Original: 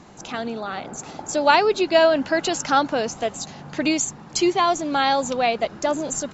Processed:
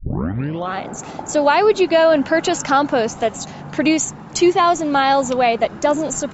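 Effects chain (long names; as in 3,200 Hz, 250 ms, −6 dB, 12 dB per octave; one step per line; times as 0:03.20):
turntable start at the beginning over 0.73 s
parametric band 4,800 Hz −6 dB 1.3 octaves
boost into a limiter +9.5 dB
level −3.5 dB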